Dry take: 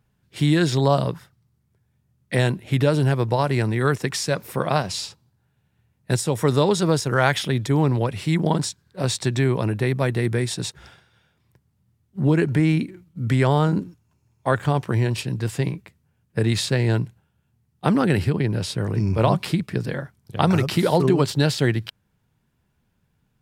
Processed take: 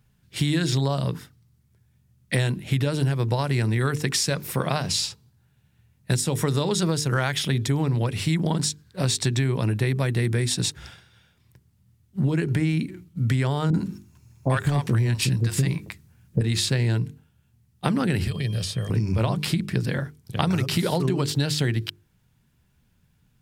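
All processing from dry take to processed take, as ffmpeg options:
ffmpeg -i in.wav -filter_complex "[0:a]asettb=1/sr,asplit=3[link_01][link_02][link_03];[link_01]atrim=end=13.704[link_04];[link_02]atrim=start=13.7:end=16.41,asetpts=PTS-STARTPTS,afade=type=in:duration=0.004:curve=qsin,afade=type=out:start_time=2.706:duration=0.004:curve=qsin,equalizer=frequency=3000:width_type=o:width=0.35:gain=-3,acontrast=80,acrossover=split=600[link_05][link_06];[link_06]adelay=40[link_07];[link_05][link_07]amix=inputs=2:normalize=0,atrim=end_sample=119511[link_08];[link_03]atrim=start=16.406[link_09];[link_04][link_08]acrossfade=duration=0.004:curve1=hsin:curve2=qsin[link_10];[link_10][link_09]acrossfade=duration=0.004:curve1=qsin:curve2=hsin,asettb=1/sr,asplit=3[link_11][link_12][link_13];[link_11]atrim=end=18.274[link_14];[link_12]atrim=start=18.27:end=18.9,asetpts=PTS-STARTPTS,afade=type=in:duration=0.004:curve=qsin,afade=type=out:start_time=0.626:duration=0.004:curve=qsin,aeval=exprs='val(0)+0.00631*sin(2*PI*3200*n/s)':channel_layout=same,aecho=1:1:1.7:0.54,atrim=end_sample=27783,acrossover=split=730|3000[link_15][link_16][link_17];[link_15]acompressor=threshold=-29dB:ratio=4[link_18];[link_16]acompressor=threshold=-46dB:ratio=4[link_19];[link_17]acompressor=threshold=-38dB:ratio=4[link_20];[link_18][link_19][link_20]amix=inputs=3:normalize=0[link_21];[link_13]atrim=start=18.896[link_22];[link_14][link_21]acrossfade=duration=0.004:curve1=hsin:curve2=qsin[link_23];[link_23][link_22]acrossfade=duration=0.004:curve1=qsin:curve2=hsin,equalizer=frequency=680:width_type=o:width=2.8:gain=-7.5,bandreject=frequency=50:width_type=h:width=6,bandreject=frequency=100:width_type=h:width=6,bandreject=frequency=150:width_type=h:width=6,bandreject=frequency=200:width_type=h:width=6,bandreject=frequency=250:width_type=h:width=6,bandreject=frequency=300:width_type=h:width=6,bandreject=frequency=350:width_type=h:width=6,bandreject=frequency=400:width_type=h:width=6,bandreject=frequency=450:width_type=h:width=6,acompressor=threshold=-26dB:ratio=6,volume=6.5dB" out.wav

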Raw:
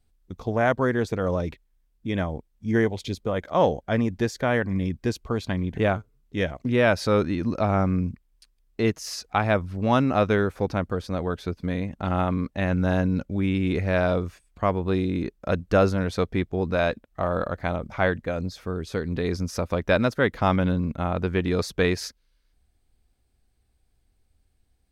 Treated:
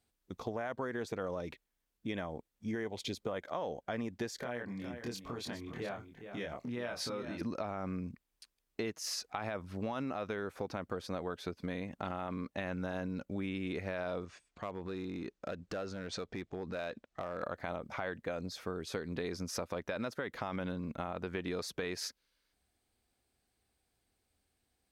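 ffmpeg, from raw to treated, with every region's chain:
ffmpeg -i in.wav -filter_complex "[0:a]asettb=1/sr,asplit=3[link_01][link_02][link_03];[link_01]atrim=end=4.364[link_04];[link_02]atrim=start=4.36:end=7.41,asetpts=PTS-STARTPTS,afade=type=in:duration=0.004:curve=qsin,afade=type=out:start_time=3.046:duration=0.004:curve=qsin,acompressor=threshold=-32dB:ratio=8:attack=3.2:release=140:knee=1:detection=peak,asplit=2[link_05][link_06];[link_06]adelay=25,volume=-2.5dB[link_07];[link_05][link_07]amix=inputs=2:normalize=0,atrim=end_sample=134505,aecho=1:1:414:0.299,atrim=end_sample=134505[link_08];[link_03]atrim=start=7.406[link_09];[link_04][link_08]acrossfade=duration=0.004:curve1=hsin:curve2=qsin[link_10];[link_10][link_09]acrossfade=duration=0.004:curve1=qsin:curve2=hsin,asettb=1/sr,asplit=3[link_11][link_12][link_13];[link_11]atrim=end=14.254[link_14];[link_12]atrim=start=14.25:end=17.43,asetpts=PTS-STARTPTS,afade=type=in:duration=0.004:curve=qsin,afade=type=out:start_time=3.176:duration=0.004:curve=qsin,lowpass=frequency=7700:width=0.5412,lowpass=frequency=7700:width=1.3066,acompressor=threshold=-30dB:ratio=5:attack=3.2:release=140:knee=1:detection=peak,asoftclip=type=hard:threshold=-27dB[link_15];[link_13]atrim=start=17.426[link_16];[link_14][link_15]acrossfade=duration=0.004:curve1=hsin:curve2=qsin[link_17];[link_17][link_16]acrossfade=duration=0.004:curve1=qsin:curve2=hsin,highpass=frequency=320:poles=1,alimiter=limit=-17.5dB:level=0:latency=1:release=38,acompressor=threshold=-33dB:ratio=6,volume=-1.5dB" out.wav

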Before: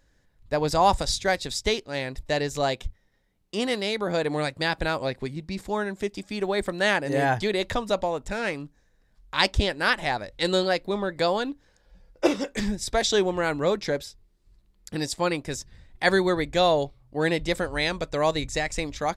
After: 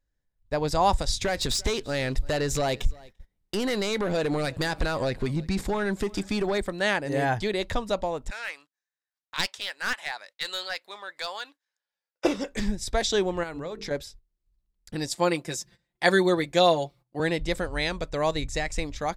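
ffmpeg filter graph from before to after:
ffmpeg -i in.wav -filter_complex "[0:a]asettb=1/sr,asplit=3[link_01][link_02][link_03];[link_01]atrim=end=1.214[link_04];[link_02]atrim=start=1.21:end=6.58,asetpts=PTS-STARTPTS,afade=type=in:duration=0.004:curve=qsin,afade=type=out:start_time=5.366:duration=0.004:curve=qsin,acompressor=threshold=-28dB:ratio=4:attack=3.2:release=140:knee=1:detection=peak,aeval=exprs='0.119*sin(PI/2*2*val(0)/0.119)':channel_layout=same,aecho=1:1:342:0.0668,atrim=end_sample=236817[link_05];[link_03]atrim=start=6.576[link_06];[link_04][link_05]acrossfade=duration=0.004:curve1=hsin:curve2=qsin[link_07];[link_07][link_06]acrossfade=duration=0.004:curve1=qsin:curve2=hsin,asettb=1/sr,asplit=3[link_08][link_09][link_10];[link_08]atrim=end=8.304[link_11];[link_09]atrim=start=8.3:end=12.25,asetpts=PTS-STARTPTS,afade=type=in:duration=0.004:curve=qsin,afade=type=out:start_time=3.946:duration=0.004:curve=qsin,highpass=1200,aeval=exprs='clip(val(0),-1,0.0891)':channel_layout=same[link_12];[link_10]atrim=start=12.246[link_13];[link_11][link_12]acrossfade=duration=0.004:curve1=hsin:curve2=qsin[link_14];[link_14][link_13]acrossfade=duration=0.004:curve1=qsin:curve2=hsin,asettb=1/sr,asplit=3[link_15][link_16][link_17];[link_15]atrim=end=13.434[link_18];[link_16]atrim=start=13.43:end=13.91,asetpts=PTS-STARTPTS,afade=type=in:duration=0.004:curve=qsin,afade=type=out:start_time=0.476:duration=0.004:curve=qsin,bandreject=frequency=50:width_type=h:width=6,bandreject=frequency=100:width_type=h:width=6,bandreject=frequency=150:width_type=h:width=6,bandreject=frequency=200:width_type=h:width=6,bandreject=frequency=250:width_type=h:width=6,bandreject=frequency=300:width_type=h:width=6,bandreject=frequency=350:width_type=h:width=6,bandreject=frequency=400:width_type=h:width=6,bandreject=frequency=450:width_type=h:width=6,acompressor=threshold=-29dB:ratio=6:attack=3.2:release=140:knee=1:detection=peak[link_19];[link_17]atrim=start=13.906[link_20];[link_18][link_19]acrossfade=duration=0.004:curve1=hsin:curve2=qsin[link_21];[link_21][link_20]acrossfade=duration=0.004:curve1=qsin:curve2=hsin,asettb=1/sr,asplit=3[link_22][link_23][link_24];[link_22]atrim=end=15.114[link_25];[link_23]atrim=start=15.11:end=17.2,asetpts=PTS-STARTPTS,afade=type=in:duration=0.004:curve=qsin,afade=type=out:start_time=2.086:duration=0.004:curve=qsin,highpass=160,highshelf=frequency=6100:gain=5,aecho=1:1:5.8:0.66,atrim=end_sample=92169[link_26];[link_24]atrim=start=17.196[link_27];[link_25][link_26]acrossfade=duration=0.004:curve1=hsin:curve2=qsin[link_28];[link_28][link_27]acrossfade=duration=0.004:curve1=qsin:curve2=hsin,agate=range=-17dB:threshold=-47dB:ratio=16:detection=peak,lowshelf=frequency=62:gain=9,volume=-2.5dB" out.wav

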